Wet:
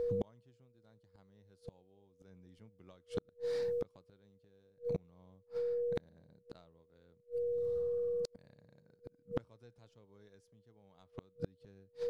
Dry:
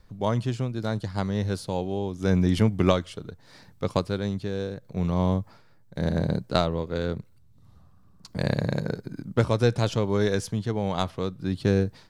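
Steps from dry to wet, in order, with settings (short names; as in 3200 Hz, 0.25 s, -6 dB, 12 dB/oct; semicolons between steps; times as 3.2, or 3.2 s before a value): whine 480 Hz -32 dBFS; flipped gate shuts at -24 dBFS, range -38 dB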